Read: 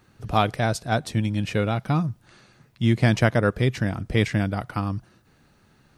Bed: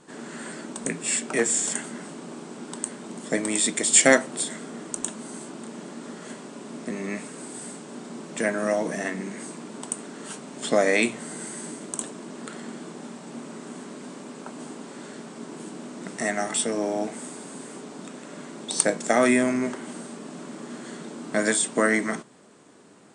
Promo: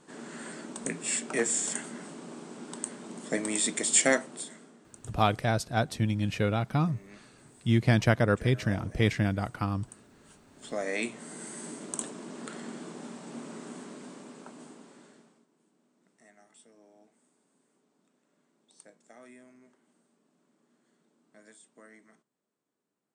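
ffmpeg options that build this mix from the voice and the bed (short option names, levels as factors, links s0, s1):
-filter_complex "[0:a]adelay=4850,volume=0.631[s0];[1:a]volume=3.98,afade=t=out:st=3.82:d=0.97:silence=0.16788,afade=t=in:st=10.46:d=1.46:silence=0.141254,afade=t=out:st=13.59:d=1.87:silence=0.0334965[s1];[s0][s1]amix=inputs=2:normalize=0"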